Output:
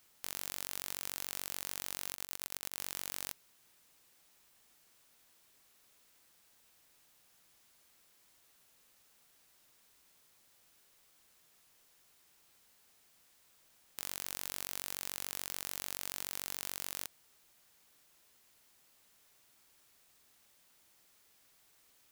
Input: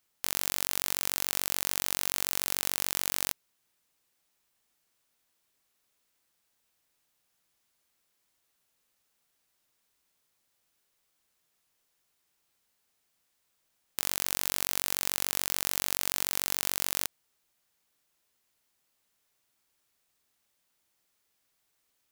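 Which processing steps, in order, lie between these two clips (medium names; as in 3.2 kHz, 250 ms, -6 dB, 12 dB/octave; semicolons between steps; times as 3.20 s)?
2.15–2.80 s: slow attack 437 ms; overload inside the chain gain 21 dB; trim +8.5 dB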